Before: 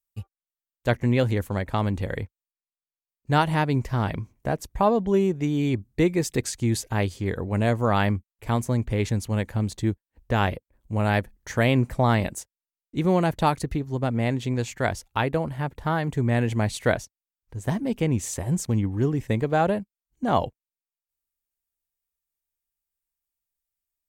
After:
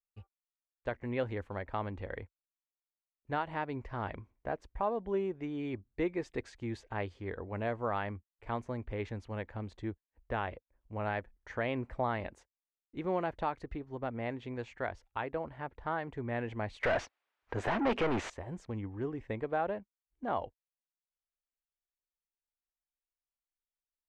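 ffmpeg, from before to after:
-filter_complex "[0:a]asettb=1/sr,asplit=3[a][b][c];[a]atrim=end=16.834[d];[b]atrim=start=16.83:end=18.3,asetpts=PTS-STARTPTS,afade=t=in:d=0.004:c=qsin,afade=t=out:st=1.466:d=0.004:c=qsin,asplit=2[e][f];[f]highpass=f=720:p=1,volume=36dB,asoftclip=type=tanh:threshold=-9dB[g];[e][g]amix=inputs=2:normalize=0,lowpass=f=3.7k:p=1,volume=-6dB[h];[c]atrim=start=18.296[i];[d][h]acrossfade=d=0.004:c1=hsin:c2=qsin[j];[j][i]acrossfade=d=0.004:c1=qsin:c2=hsin,lowpass=2.2k,equalizer=f=150:t=o:w=1.6:g=-12,alimiter=limit=-14dB:level=0:latency=1:release=243,volume=-7.5dB"

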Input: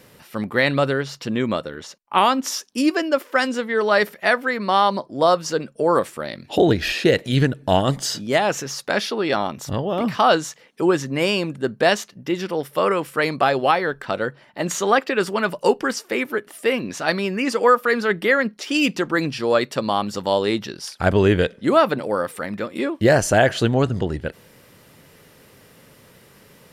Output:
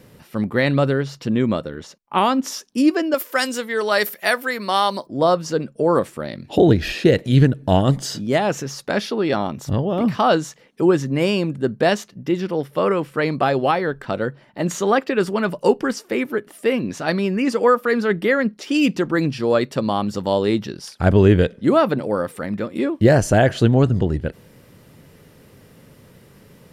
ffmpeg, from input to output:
-filter_complex "[0:a]asettb=1/sr,asplit=3[a][b][c];[a]atrim=end=3.144[d];[b]atrim=start=3.14:end=5.07,asetpts=PTS-STARTPTS,afade=t=in:d=0.004:c=qsin,afade=t=out:st=1.926:d=0.004:c=qsin,aemphasis=mode=production:type=riaa[e];[c]atrim=start=5.066[f];[d][e]acrossfade=d=0.004:c1=hsin:c2=qsin[g];[g][f]acrossfade=d=0.004:c1=qsin:c2=hsin,asettb=1/sr,asplit=3[h][i][j];[h]atrim=end=12.404[k];[i]atrim=start=12.4:end=13.42,asetpts=PTS-STARTPTS,afade=t=in:d=0.004:c=qsin,afade=t=out:st=1.016:d=0.004:c=qsin,acrossover=split=5400[l][m];[m]acompressor=threshold=-49dB:ratio=4:attack=1:release=60[n];[l][n]amix=inputs=2:normalize=0[o];[j]atrim=start=13.416[p];[k][o]acrossfade=d=0.004:c1=hsin:c2=qsin[q];[q][p]acrossfade=d=0.004:c1=qsin:c2=hsin,lowshelf=f=440:g=10,volume=-3.5dB"

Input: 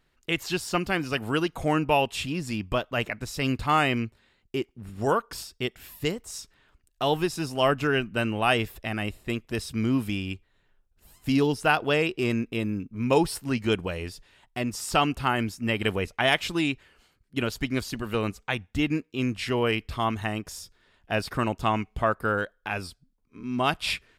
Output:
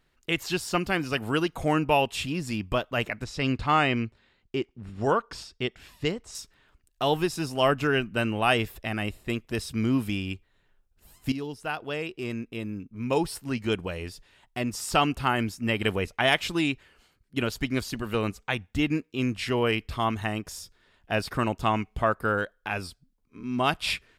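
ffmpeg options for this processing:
-filter_complex "[0:a]asettb=1/sr,asplit=3[a][b][c];[a]atrim=end=3.244[d];[b]atrim=start=3.24:end=6.35,asetpts=PTS-STARTPTS,afade=t=in:d=0.004:c=qsin,afade=t=out:st=3.106:d=0.004:c=qsin,lowpass=5.8k[e];[c]atrim=start=6.346[f];[d][e]acrossfade=d=0.004:c1=hsin:c2=qsin[g];[g][f]acrossfade=d=0.004:c1=qsin:c2=hsin,asplit=2[h][i];[h]atrim=end=11.32,asetpts=PTS-STARTPTS,afade=t=out:st=11.316:d=0.004:c=hsin:silence=0.237137[j];[i]atrim=start=11.32,asetpts=PTS-STARTPTS,afade=t=in:d=3.47:silence=0.237137[k];[j][k]concat=n=2:v=0:a=1"

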